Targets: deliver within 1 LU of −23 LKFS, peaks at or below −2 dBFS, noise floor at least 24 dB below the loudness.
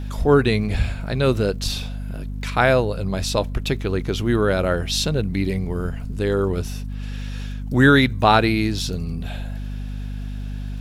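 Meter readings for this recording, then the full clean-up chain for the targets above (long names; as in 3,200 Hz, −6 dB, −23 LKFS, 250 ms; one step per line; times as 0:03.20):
crackle rate 37 per second; mains hum 50 Hz; hum harmonics up to 250 Hz; level of the hum −26 dBFS; integrated loudness −21.0 LKFS; sample peak −1.5 dBFS; target loudness −23.0 LKFS
→ click removal
mains-hum notches 50/100/150/200/250 Hz
level −2 dB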